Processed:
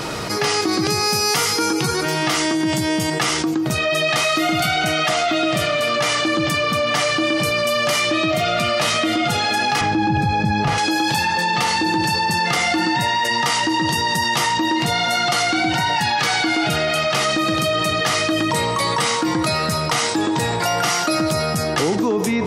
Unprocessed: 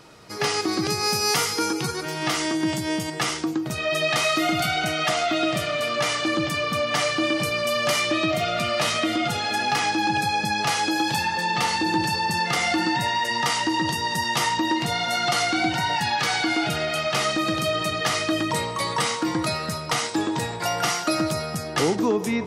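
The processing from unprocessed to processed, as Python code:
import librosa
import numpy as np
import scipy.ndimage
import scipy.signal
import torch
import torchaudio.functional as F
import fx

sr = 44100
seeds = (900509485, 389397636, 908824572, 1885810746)

y = fx.riaa(x, sr, side='playback', at=(9.81, 10.78))
y = fx.env_flatten(y, sr, amount_pct=70)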